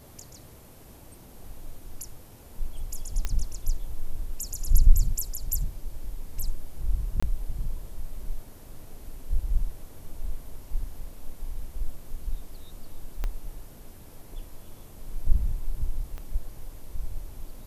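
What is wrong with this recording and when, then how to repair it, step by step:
3.25 pop -14 dBFS
7.2–7.22 gap 25 ms
13.24 pop -17 dBFS
16.18 pop -26 dBFS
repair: de-click; interpolate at 7.2, 25 ms

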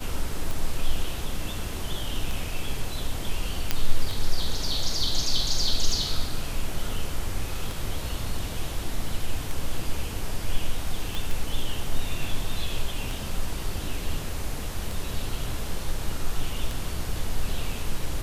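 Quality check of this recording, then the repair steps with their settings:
tick 33 1/3 rpm
3.71 pop -7 dBFS
11.15 pop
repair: de-click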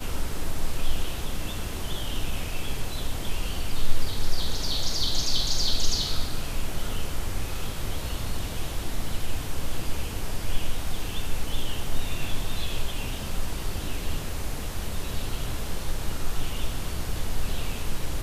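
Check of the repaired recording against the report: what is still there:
none

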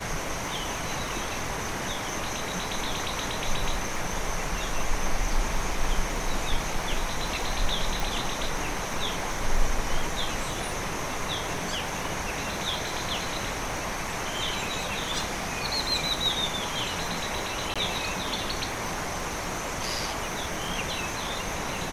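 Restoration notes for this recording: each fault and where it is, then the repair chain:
crackle 58/s -36 dBFS
8 pop
17.74–17.76 gap 16 ms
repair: de-click; interpolate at 17.74, 16 ms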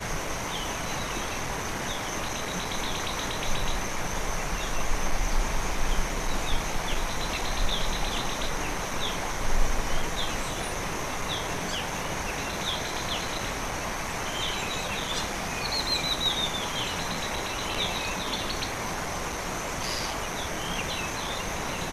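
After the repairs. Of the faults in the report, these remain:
8 pop

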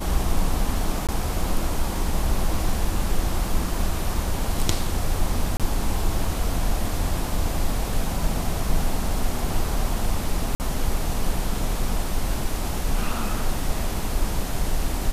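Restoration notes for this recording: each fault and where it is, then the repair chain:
1.07–1.09 gap 17 ms
5.57–5.6 gap 27 ms
10.55–10.6 gap 49 ms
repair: interpolate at 1.07, 17 ms; interpolate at 5.57, 27 ms; interpolate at 10.55, 49 ms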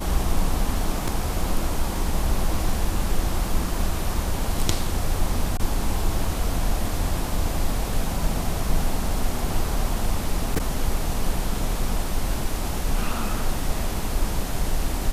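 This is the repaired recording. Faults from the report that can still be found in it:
none

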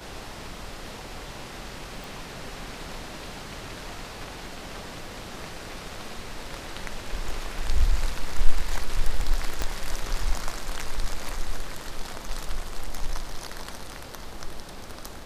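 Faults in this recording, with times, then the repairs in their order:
2.04 pop
9.62 pop -12 dBFS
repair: de-click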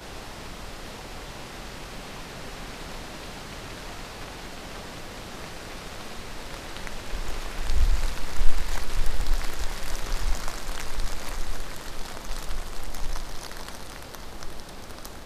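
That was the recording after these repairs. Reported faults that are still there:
9.62 pop

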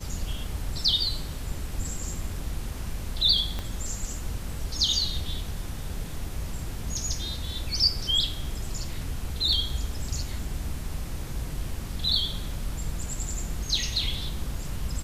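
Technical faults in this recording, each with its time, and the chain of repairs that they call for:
3.59 pop -17 dBFS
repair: de-click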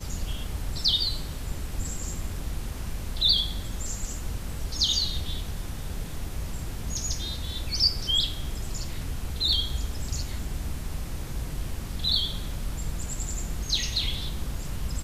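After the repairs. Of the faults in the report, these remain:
3.59 pop

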